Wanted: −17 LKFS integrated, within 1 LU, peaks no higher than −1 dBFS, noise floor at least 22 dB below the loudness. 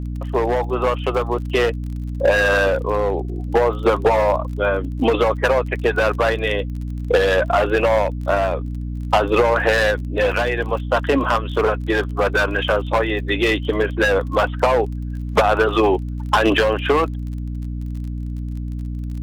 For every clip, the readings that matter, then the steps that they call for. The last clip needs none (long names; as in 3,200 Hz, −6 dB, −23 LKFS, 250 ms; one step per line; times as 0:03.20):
crackle rate 31 per second; mains hum 60 Hz; hum harmonics up to 300 Hz; level of the hum −24 dBFS; integrated loudness −19.5 LKFS; sample peak −6.5 dBFS; target loudness −17.0 LKFS
→ click removal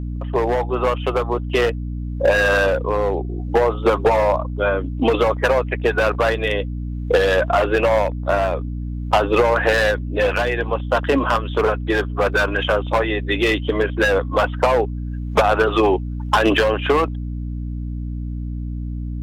crackle rate 0 per second; mains hum 60 Hz; hum harmonics up to 300 Hz; level of the hum −24 dBFS
→ mains-hum notches 60/120/180/240/300 Hz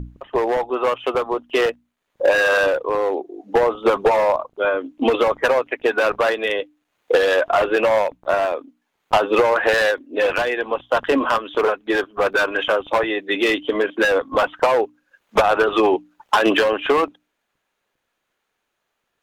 mains hum none found; integrated loudness −19.5 LKFS; sample peak −4.5 dBFS; target loudness −17.0 LKFS
→ level +2.5 dB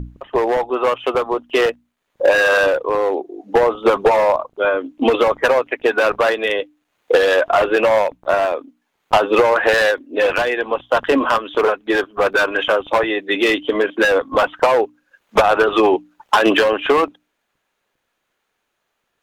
integrated loudness −17.0 LKFS; sample peak −2.0 dBFS; background noise floor −73 dBFS